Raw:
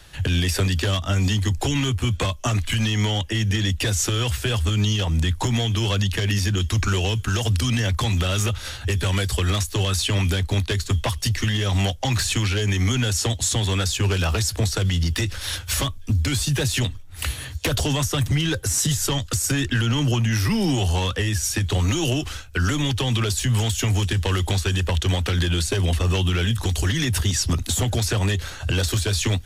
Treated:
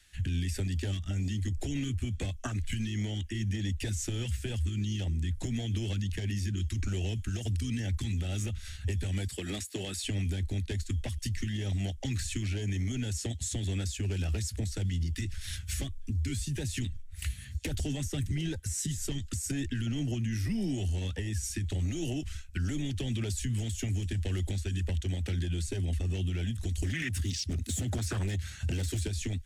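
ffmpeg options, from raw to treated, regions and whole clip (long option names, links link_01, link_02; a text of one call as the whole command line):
ffmpeg -i in.wav -filter_complex "[0:a]asettb=1/sr,asplit=3[link_01][link_02][link_03];[link_01]atrim=end=9.284[link_04];[link_02]atrim=start=9.28:end=10.04,asetpts=PTS-STARTPTS,afade=type=in:duration=0.004:curve=qsin,afade=type=out:start_time=0.756:duration=0.004:curve=qsin,highpass=210,bandreject=frequency=6100:width=9.7[link_05];[link_03]atrim=start=10.036[link_06];[link_04][link_05]acrossfade=duration=0.004:curve1=hsin:curve2=qsin[link_07];[link_07][link_06]acrossfade=duration=0.004:curve1=qsin:curve2=hsin,asettb=1/sr,asplit=3[link_08][link_09][link_10];[link_08]atrim=end=26.824[link_11];[link_09]atrim=start=26.82:end=29.08,asetpts=PTS-STARTPTS,afade=type=in:duration=0.004:curve=qsin,afade=type=out:start_time=2.256:duration=0.004:curve=qsin,highpass=frequency=70:width=0.5412,highpass=frequency=70:width=1.3066,acontrast=47,aeval=exprs='0.251*(abs(mod(val(0)/0.251+3,4)-2)-1)':channel_layout=same[link_12];[link_10]atrim=start=29.076[link_13];[link_11][link_12]acrossfade=duration=0.004:curve1=hsin:curve2=qsin[link_14];[link_14][link_13]acrossfade=duration=0.004:curve1=qsin:curve2=hsin,afwtdn=0.0794,equalizer=frequency=125:width_type=o:width=1:gain=-8,equalizer=frequency=500:width_type=o:width=1:gain=-10,equalizer=frequency=1000:width_type=o:width=1:gain=-10,equalizer=frequency=2000:width_type=o:width=1:gain=8,equalizer=frequency=8000:width_type=o:width=1:gain=8,alimiter=level_in=0.5dB:limit=-24dB:level=0:latency=1:release=336,volume=-0.5dB" out.wav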